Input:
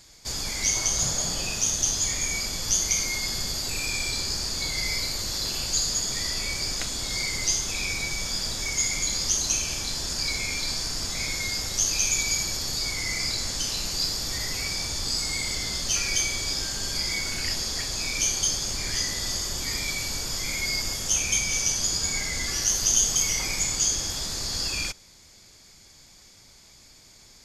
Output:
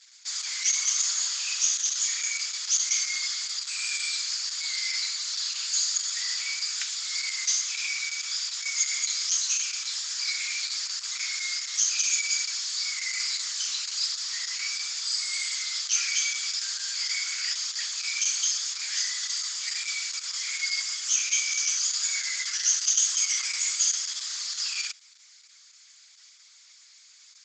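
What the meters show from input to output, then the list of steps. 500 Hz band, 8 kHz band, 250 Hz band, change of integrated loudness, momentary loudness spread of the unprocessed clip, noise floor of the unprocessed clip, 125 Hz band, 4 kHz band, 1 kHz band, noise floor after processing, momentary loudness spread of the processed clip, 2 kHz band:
under -25 dB, -0.5 dB, under -40 dB, -1.0 dB, 5 LU, -53 dBFS, under -40 dB, -0.5 dB, -8.5 dB, -55 dBFS, 6 LU, -1.5 dB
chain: high-pass 1.3 kHz 24 dB/octave; Opus 10 kbps 48 kHz

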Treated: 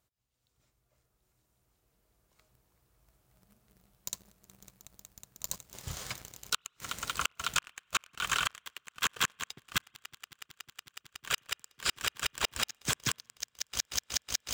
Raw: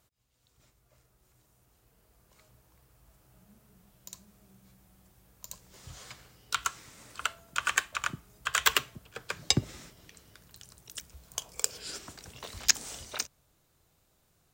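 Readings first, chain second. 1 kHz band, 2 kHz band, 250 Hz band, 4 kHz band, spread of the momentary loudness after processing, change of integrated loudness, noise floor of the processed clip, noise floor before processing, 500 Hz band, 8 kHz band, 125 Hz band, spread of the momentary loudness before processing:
-1.0 dB, -1.5 dB, -5.5 dB, 0.0 dB, 18 LU, -2.5 dB, -79 dBFS, -71 dBFS, -2.5 dB, -2.0 dB, -4.5 dB, 22 LU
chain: dynamic bell 3.2 kHz, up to +5 dB, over -43 dBFS, Q 1.8; echo with a slow build-up 184 ms, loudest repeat 8, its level -12.5 dB; inverted gate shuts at -18 dBFS, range -31 dB; spring tank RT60 1.8 s, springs 35/57 ms, chirp 75 ms, DRR 19.5 dB; waveshaping leveller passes 3; trim -3 dB

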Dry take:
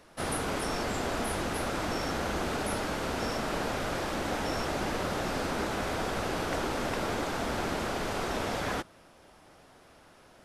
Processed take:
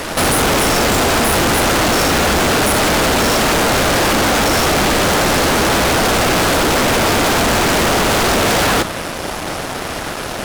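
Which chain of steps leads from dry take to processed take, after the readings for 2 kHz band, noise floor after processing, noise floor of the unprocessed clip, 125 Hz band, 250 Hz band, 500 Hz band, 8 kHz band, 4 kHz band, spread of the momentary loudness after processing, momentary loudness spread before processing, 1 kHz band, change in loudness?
+19.5 dB, -24 dBFS, -57 dBFS, +17.5 dB, +17.0 dB, +17.0 dB, +23.0 dB, +21.5 dB, 10 LU, 1 LU, +18.0 dB, +18.5 dB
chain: fuzz box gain 52 dB, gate -59 dBFS

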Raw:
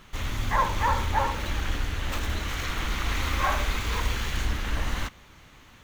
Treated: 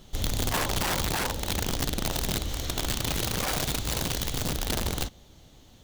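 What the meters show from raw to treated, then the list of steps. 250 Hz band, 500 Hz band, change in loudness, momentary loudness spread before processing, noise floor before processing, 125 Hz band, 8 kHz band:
+3.5 dB, +2.0 dB, 0.0 dB, 6 LU, -52 dBFS, -1.0 dB, +8.5 dB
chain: high-order bell 1.6 kHz -13 dB; integer overflow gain 23 dB; gain riding 2 s

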